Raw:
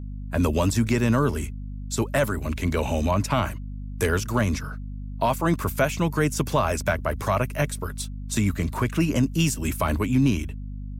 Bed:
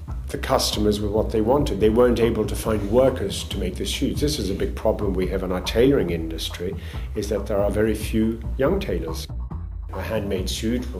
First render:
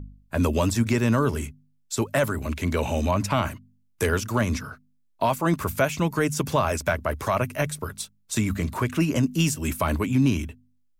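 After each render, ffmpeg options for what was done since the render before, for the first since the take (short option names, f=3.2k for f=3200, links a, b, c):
-af "bandreject=f=50:t=h:w=4,bandreject=f=100:t=h:w=4,bandreject=f=150:t=h:w=4,bandreject=f=200:t=h:w=4,bandreject=f=250:t=h:w=4"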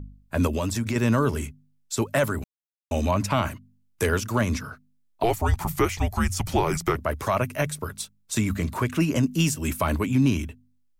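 -filter_complex "[0:a]asettb=1/sr,asplit=3[a][b][c];[a]atrim=end=0.474[d];[b]atrim=start=0.47:end=0.96,asetpts=PTS-STARTPTS,afade=t=in:d=0.004:c=qsin,afade=t=out:st=0.486:d=0.004:c=qsin,acompressor=threshold=-23dB:ratio=3:attack=3.2:release=140:knee=1:detection=peak[e];[c]atrim=start=0.956[f];[d][e]acrossfade=d=0.004:c1=hsin:c2=qsin[g];[g][f]acrossfade=d=0.004:c1=qsin:c2=hsin,asettb=1/sr,asplit=3[h][i][j];[h]atrim=end=5.234[k];[i]atrim=start=5.23:end=6.96,asetpts=PTS-STARTPTS,afade=t=in:d=0.004:c=qsin,afade=t=out:st=1.726:d=0.004:c=qsin,afreqshift=-240[l];[j]atrim=start=6.956[m];[k][l]acrossfade=d=0.004:c1=hsin:c2=qsin[n];[n][m]acrossfade=d=0.004:c1=qsin:c2=hsin,asplit=3[o][p][q];[o]atrim=end=2.44,asetpts=PTS-STARTPTS,afade=t=out:st=2.436:d=0.004:c=hsin[r];[p]atrim=start=2.44:end=2.91,asetpts=PTS-STARTPTS,volume=0[s];[q]atrim=start=2.91,asetpts=PTS-STARTPTS,afade=t=in:d=0.004:c=hsin[t];[r][s][t]concat=n=3:v=0:a=1"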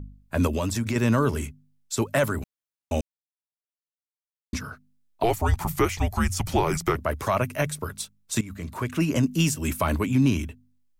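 -filter_complex "[0:a]asplit=4[a][b][c][d];[a]atrim=end=3.01,asetpts=PTS-STARTPTS,afade=t=out:st=3.006:d=0.004:c=hsin[e];[b]atrim=start=3.01:end=4.53,asetpts=PTS-STARTPTS,volume=0[f];[c]atrim=start=4.53:end=8.41,asetpts=PTS-STARTPTS,afade=t=in:d=0.004:c=hsin,afade=t=out:st=3.876:d=0.004:c=hsin:silence=0.141254[g];[d]atrim=start=8.41,asetpts=PTS-STARTPTS,afade=t=in:d=0.72:silence=0.141254[h];[e][f][g][h]concat=n=4:v=0:a=1"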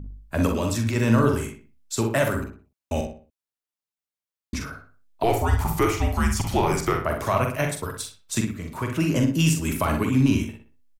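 -filter_complex "[0:a]asplit=2[a][b];[b]adelay=44,volume=-6.5dB[c];[a][c]amix=inputs=2:normalize=0,asplit=2[d][e];[e]adelay=62,lowpass=f=2.8k:p=1,volume=-6dB,asplit=2[f][g];[g]adelay=62,lowpass=f=2.8k:p=1,volume=0.37,asplit=2[h][i];[i]adelay=62,lowpass=f=2.8k:p=1,volume=0.37,asplit=2[j][k];[k]adelay=62,lowpass=f=2.8k:p=1,volume=0.37[l];[d][f][h][j][l]amix=inputs=5:normalize=0"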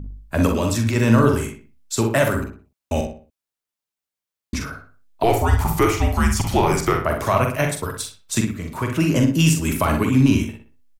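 -af "volume=4dB"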